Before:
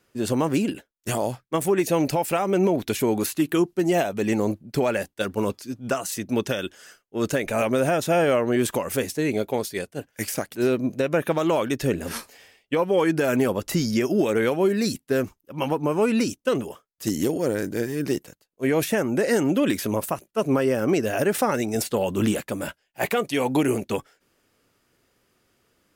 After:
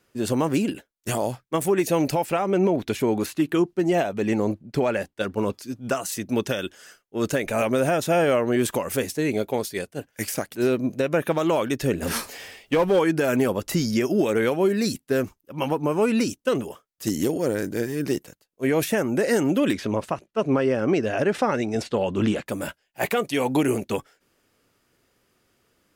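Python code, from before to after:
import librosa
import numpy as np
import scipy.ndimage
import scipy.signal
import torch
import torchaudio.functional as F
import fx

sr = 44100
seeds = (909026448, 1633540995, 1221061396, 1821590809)

y = fx.lowpass(x, sr, hz=4000.0, slope=6, at=(2.24, 5.53))
y = fx.power_curve(y, sr, exponent=0.7, at=(12.02, 12.99))
y = fx.lowpass(y, sr, hz=4600.0, slope=12, at=(19.73, 22.46))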